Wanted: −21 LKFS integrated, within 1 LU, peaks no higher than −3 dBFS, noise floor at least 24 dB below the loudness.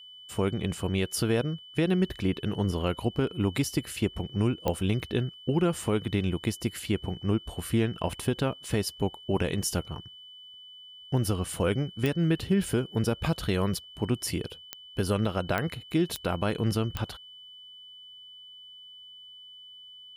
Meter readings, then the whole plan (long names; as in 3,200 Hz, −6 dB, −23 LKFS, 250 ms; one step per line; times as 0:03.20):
number of clicks 6; interfering tone 3,000 Hz; level of the tone −46 dBFS; integrated loudness −29.5 LKFS; sample peak −12.5 dBFS; target loudness −21.0 LKFS
→ click removal
notch filter 3,000 Hz, Q 30
level +8.5 dB